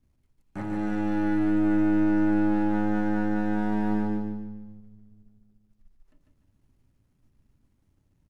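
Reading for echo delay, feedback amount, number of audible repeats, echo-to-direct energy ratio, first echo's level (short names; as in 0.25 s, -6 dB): 0.147 s, 38%, 4, -3.5 dB, -4.0 dB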